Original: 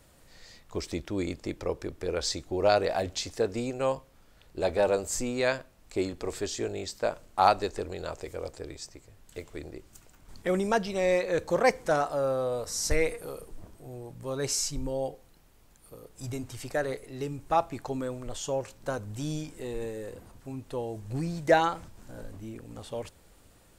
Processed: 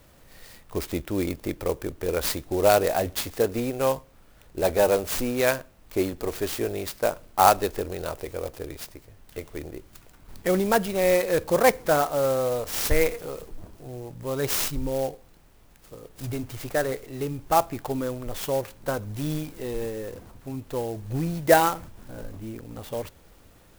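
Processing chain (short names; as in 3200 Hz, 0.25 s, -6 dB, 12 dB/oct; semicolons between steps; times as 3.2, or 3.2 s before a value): clock jitter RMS 0.043 ms; gain +4.5 dB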